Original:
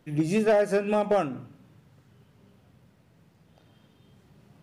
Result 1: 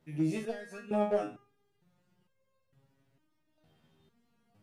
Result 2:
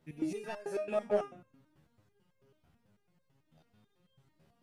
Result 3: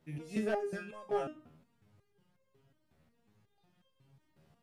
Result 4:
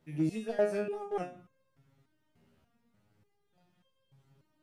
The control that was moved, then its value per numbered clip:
step-sequenced resonator, speed: 2.2, 9.1, 5.5, 3.4 Hertz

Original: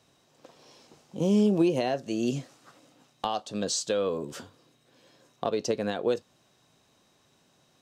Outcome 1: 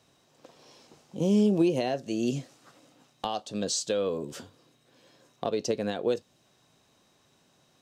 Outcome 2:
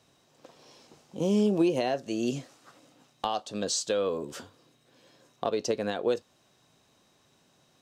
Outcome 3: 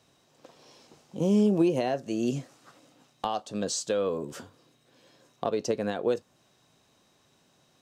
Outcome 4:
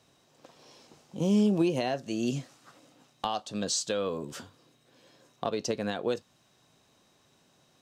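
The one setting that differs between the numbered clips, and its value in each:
dynamic equaliser, frequency: 1,200, 150, 3,800, 450 Hertz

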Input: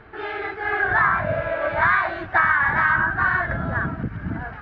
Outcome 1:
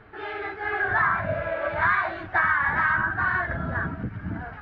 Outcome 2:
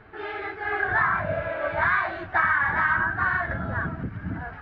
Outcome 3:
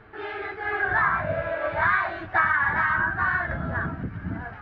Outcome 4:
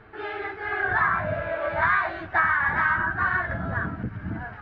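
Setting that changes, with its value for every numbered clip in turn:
flanger, speed: 0.95, 1.9, 0.42, 0.23 Hertz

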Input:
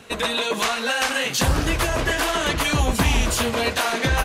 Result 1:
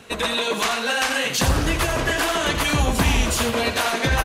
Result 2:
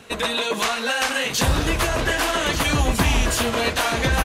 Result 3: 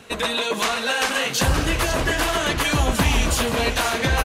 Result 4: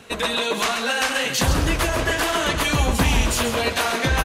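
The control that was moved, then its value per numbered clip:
single-tap delay, delay time: 85, 1,186, 524, 134 milliseconds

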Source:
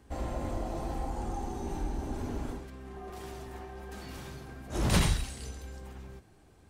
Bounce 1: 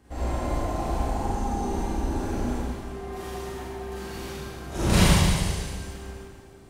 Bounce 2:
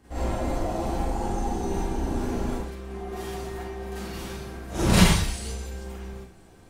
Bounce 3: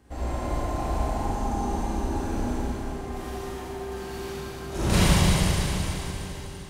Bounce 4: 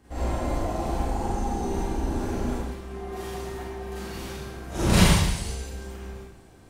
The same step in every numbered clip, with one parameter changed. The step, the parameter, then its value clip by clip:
four-comb reverb, RT60: 1.7, 0.33, 3.9, 0.79 seconds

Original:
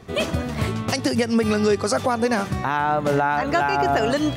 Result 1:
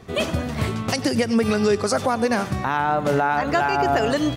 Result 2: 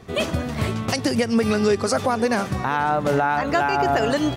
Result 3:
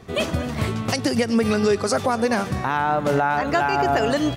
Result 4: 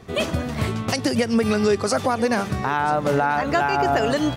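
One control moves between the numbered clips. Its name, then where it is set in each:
repeating echo, delay time: 96, 489, 239, 986 milliseconds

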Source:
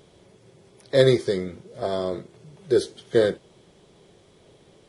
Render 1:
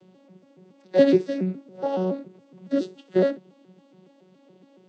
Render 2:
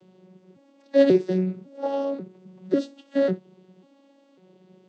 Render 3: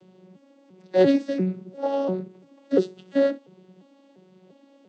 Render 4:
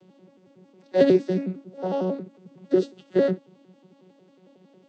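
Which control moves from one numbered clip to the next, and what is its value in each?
vocoder with an arpeggio as carrier, a note every: 140, 546, 346, 91 milliseconds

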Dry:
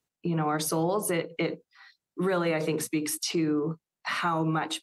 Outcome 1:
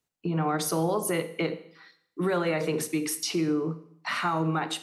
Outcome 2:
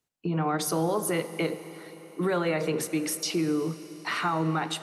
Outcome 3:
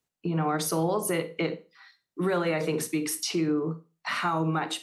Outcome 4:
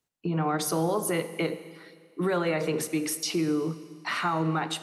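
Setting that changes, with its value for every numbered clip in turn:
four-comb reverb, RT60: 0.69, 4.4, 0.31, 1.9 seconds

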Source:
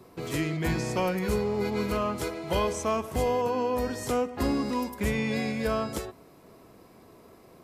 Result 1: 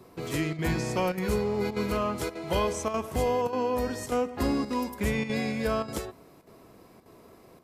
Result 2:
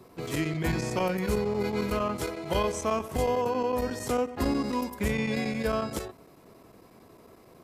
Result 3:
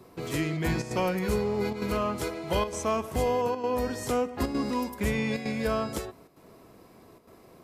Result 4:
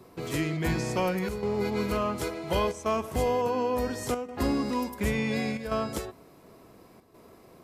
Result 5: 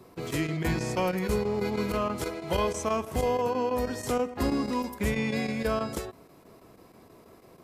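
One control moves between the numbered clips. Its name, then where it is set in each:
square-wave tremolo, speed: 1.7, 11, 1.1, 0.7, 6.2 Hertz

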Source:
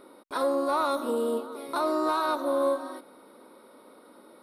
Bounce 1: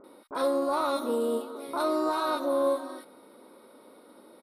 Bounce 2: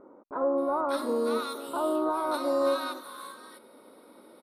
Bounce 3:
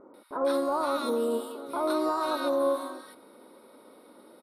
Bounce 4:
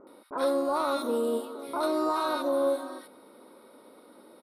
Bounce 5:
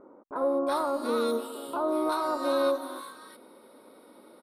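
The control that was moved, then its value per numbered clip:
multiband delay without the direct sound, delay time: 40, 580, 140, 70, 360 milliseconds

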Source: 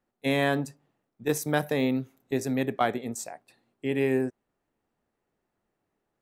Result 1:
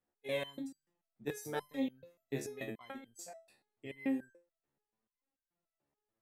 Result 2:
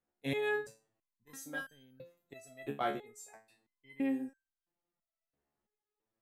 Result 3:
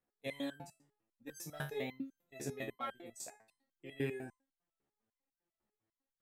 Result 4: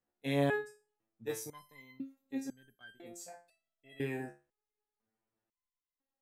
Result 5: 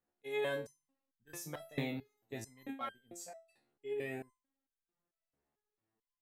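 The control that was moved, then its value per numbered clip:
step-sequenced resonator, speed: 6.9, 3, 10, 2, 4.5 Hertz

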